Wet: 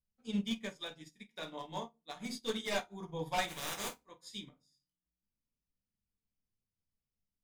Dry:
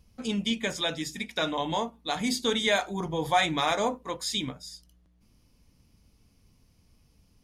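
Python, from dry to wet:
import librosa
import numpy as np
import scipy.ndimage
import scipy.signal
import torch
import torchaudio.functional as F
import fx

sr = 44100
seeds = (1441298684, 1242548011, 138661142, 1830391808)

p1 = fx.spec_flatten(x, sr, power=0.28, at=(3.47, 4.0), fade=0.02)
p2 = 10.0 ** (-19.5 / 20.0) * (np.abs((p1 / 10.0 ** (-19.5 / 20.0) + 3.0) % 4.0 - 2.0) - 1.0)
p3 = p2 + fx.room_flutter(p2, sr, wall_m=8.5, rt60_s=0.21, dry=0)
p4 = fx.room_shoebox(p3, sr, seeds[0], volume_m3=140.0, walls='furnished', distance_m=1.1)
p5 = fx.upward_expand(p4, sr, threshold_db=-38.0, expansion=2.5)
y = p5 * 10.0 ** (-8.0 / 20.0)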